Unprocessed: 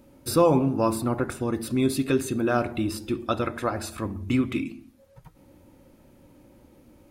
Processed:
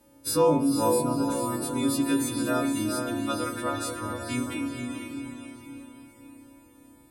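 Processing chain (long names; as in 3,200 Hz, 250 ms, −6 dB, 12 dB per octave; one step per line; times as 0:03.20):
every partial snapped to a pitch grid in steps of 2 semitones
0:00.85–0:01.32: Butterworth band-reject 1,900 Hz, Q 1.4
feedback delay with all-pass diffusion 458 ms, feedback 46%, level −4 dB
feedback delay network reverb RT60 0.31 s, low-frequency decay 1×, high-frequency decay 0.25×, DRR 3 dB
level −7 dB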